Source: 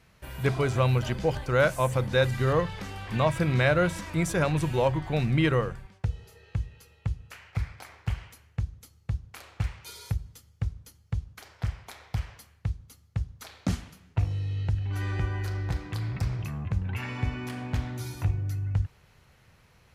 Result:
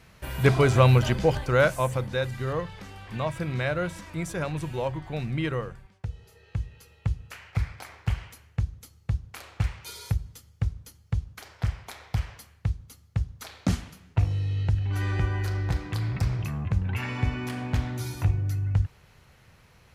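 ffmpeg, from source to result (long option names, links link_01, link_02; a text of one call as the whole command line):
ffmpeg -i in.wav -af "volume=14dB,afade=type=out:start_time=0.92:duration=1.29:silence=0.281838,afade=type=in:start_time=6.07:duration=1.04:silence=0.398107" out.wav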